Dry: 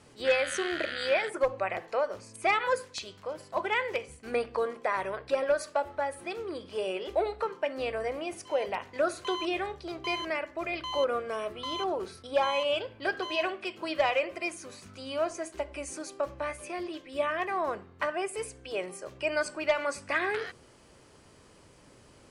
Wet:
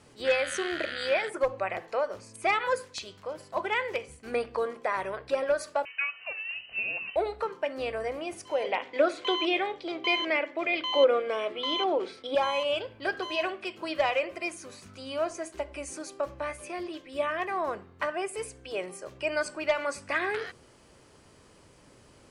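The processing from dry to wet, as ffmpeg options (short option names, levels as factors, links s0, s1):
-filter_complex "[0:a]asettb=1/sr,asplit=3[s0][s1][s2];[s0]atrim=end=5.854[s3];[s1]atrim=start=5.85:end=7.16,asetpts=PTS-STARTPTS,afade=t=in:d=0.004:c=qsin,afade=t=out:st=1.306:d=0.004:c=qsin,lowpass=f=2600:t=q:w=0.5098,lowpass=f=2600:t=q:w=0.6013,lowpass=f=2600:t=q:w=0.9,lowpass=f=2600:t=q:w=2.563,afreqshift=-3100[s4];[s2]atrim=start=7.156[s5];[s3][s4]acrossfade=d=0.004:c1=hsin:c2=qsin[s6];[s6][s5]acrossfade=d=0.004:c1=qsin:c2=hsin,asettb=1/sr,asplit=3[s7][s8][s9];[s7]atrim=end=8.644[s10];[s8]atrim=start=8.64:end=12.35,asetpts=PTS-STARTPTS,afade=t=in:d=0.004:c=qsin,afade=t=out:st=3.706:d=0.004:c=qsin,highpass=230,equalizer=f=290:t=q:w=4:g=9,equalizer=f=510:t=q:w=4:g=8,equalizer=f=800:t=q:w=4:g=4,equalizer=f=2200:t=q:w=4:g=9,equalizer=f=3300:t=q:w=4:g=9,equalizer=f=6400:t=q:w=4:g=-5,lowpass=f=7700:w=0.5412,lowpass=f=7700:w=1.3066[s11];[s9]atrim=start=12.346[s12];[s10][s11]acrossfade=d=0.004:c1=hsin:c2=qsin[s13];[s13][s12]acrossfade=d=0.004:c1=qsin:c2=hsin"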